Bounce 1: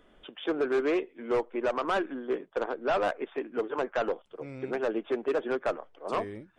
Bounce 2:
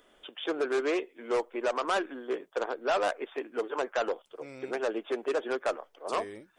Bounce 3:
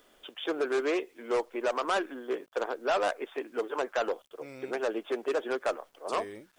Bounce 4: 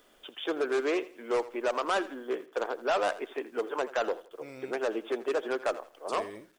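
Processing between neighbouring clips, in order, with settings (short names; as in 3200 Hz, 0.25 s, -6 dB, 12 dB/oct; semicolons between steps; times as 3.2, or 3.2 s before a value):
tone controls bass -12 dB, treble +10 dB
bit-crush 11-bit
feedback echo 83 ms, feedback 31%, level -17 dB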